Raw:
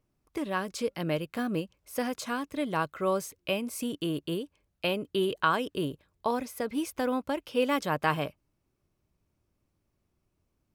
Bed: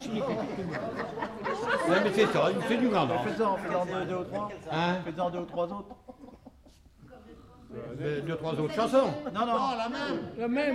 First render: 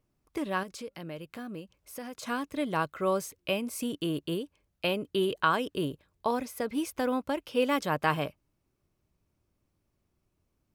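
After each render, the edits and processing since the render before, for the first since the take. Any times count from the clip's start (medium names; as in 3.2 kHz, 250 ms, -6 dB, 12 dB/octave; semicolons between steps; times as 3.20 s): 0.63–2.23 s: compression 2:1, threshold -44 dBFS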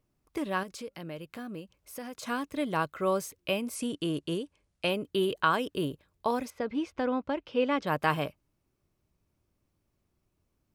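3.75–4.90 s: careless resampling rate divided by 2×, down none, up filtered; 6.50–7.87 s: distance through air 170 m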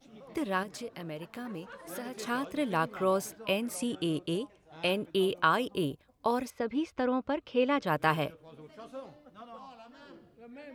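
add bed -20 dB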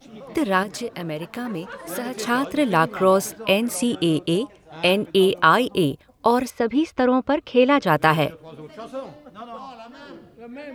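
trim +11 dB; peak limiter -2 dBFS, peak gain reduction 2.5 dB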